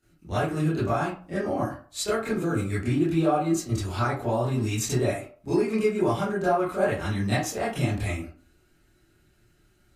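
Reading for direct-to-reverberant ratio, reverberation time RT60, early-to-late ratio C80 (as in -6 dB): -13.0 dB, 0.45 s, 10.0 dB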